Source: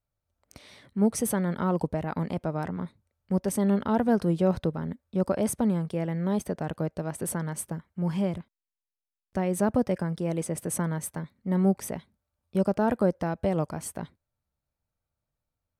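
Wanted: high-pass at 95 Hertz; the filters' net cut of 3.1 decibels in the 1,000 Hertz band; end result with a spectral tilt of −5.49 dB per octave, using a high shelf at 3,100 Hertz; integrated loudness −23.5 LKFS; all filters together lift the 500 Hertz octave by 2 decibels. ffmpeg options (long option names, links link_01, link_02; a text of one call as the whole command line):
ffmpeg -i in.wav -af "highpass=95,equalizer=frequency=500:width_type=o:gain=4,equalizer=frequency=1000:width_type=o:gain=-6.5,highshelf=frequency=3100:gain=3.5,volume=4.5dB" out.wav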